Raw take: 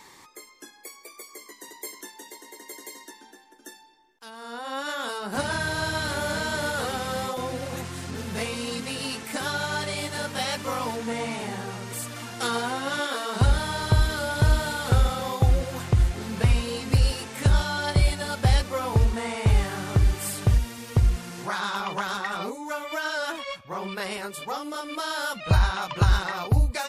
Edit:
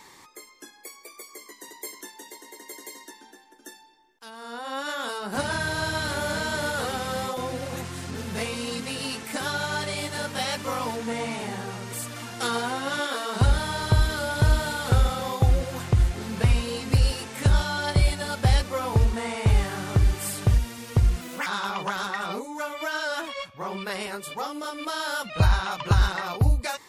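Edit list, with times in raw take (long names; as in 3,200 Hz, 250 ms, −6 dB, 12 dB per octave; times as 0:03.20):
0:21.21–0:21.57: play speed 142%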